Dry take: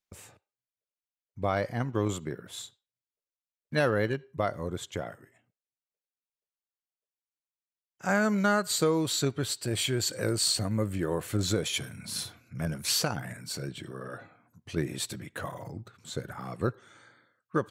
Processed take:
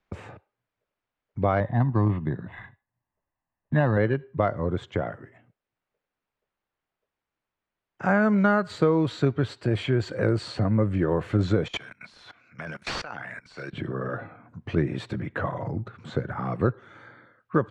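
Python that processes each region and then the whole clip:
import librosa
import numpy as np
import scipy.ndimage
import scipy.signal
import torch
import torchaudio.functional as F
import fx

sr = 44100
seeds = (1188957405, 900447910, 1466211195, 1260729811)

y = fx.chain(x, sr, fx.air_absorb(metres=290.0),
    fx.comb(ms=1.1, depth=0.63),
    fx.resample_linear(factor=8), at=(1.6, 3.97))
y = fx.chain(y, sr, fx.weighting(curve='ITU-R 468'),
    fx.clip_hard(threshold_db=-18.5),
    fx.level_steps(step_db=23), at=(11.68, 13.73))
y = scipy.signal.sosfilt(scipy.signal.butter(2, 1900.0, 'lowpass', fs=sr, output='sos'), y)
y = fx.low_shelf(y, sr, hz=110.0, db=4.5)
y = fx.band_squash(y, sr, depth_pct=40)
y = y * 10.0 ** (5.5 / 20.0)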